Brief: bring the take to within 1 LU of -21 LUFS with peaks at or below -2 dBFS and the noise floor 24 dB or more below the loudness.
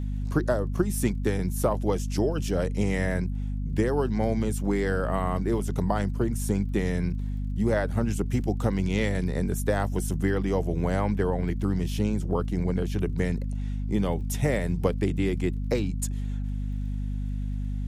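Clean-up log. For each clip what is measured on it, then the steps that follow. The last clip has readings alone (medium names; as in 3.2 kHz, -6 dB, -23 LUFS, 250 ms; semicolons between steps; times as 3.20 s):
tick rate 26 per s; hum 50 Hz; highest harmonic 250 Hz; hum level -27 dBFS; loudness -27.5 LUFS; peak level -9.5 dBFS; loudness target -21.0 LUFS
-> de-click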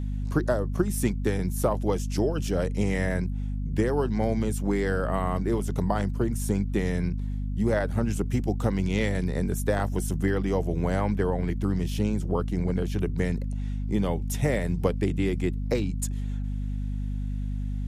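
tick rate 0.056 per s; hum 50 Hz; highest harmonic 250 Hz; hum level -27 dBFS
-> hum notches 50/100/150/200/250 Hz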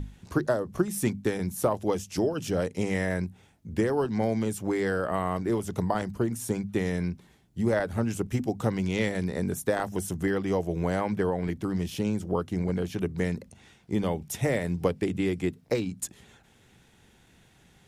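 hum not found; loudness -29.0 LUFS; peak level -11.0 dBFS; loudness target -21.0 LUFS
-> trim +8 dB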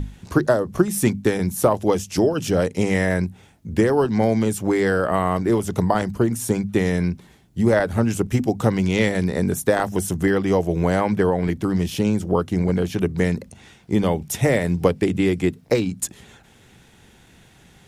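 loudness -21.0 LUFS; peak level -3.0 dBFS; noise floor -52 dBFS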